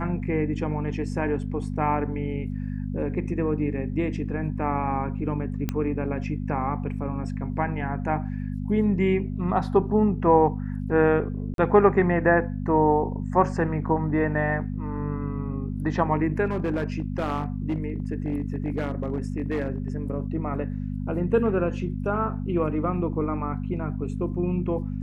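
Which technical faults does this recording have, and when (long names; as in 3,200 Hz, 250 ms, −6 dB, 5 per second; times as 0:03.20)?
mains hum 50 Hz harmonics 5 −30 dBFS
0:05.69: click −13 dBFS
0:11.54–0:11.58: drop-out 42 ms
0:16.45–0:19.88: clipping −21 dBFS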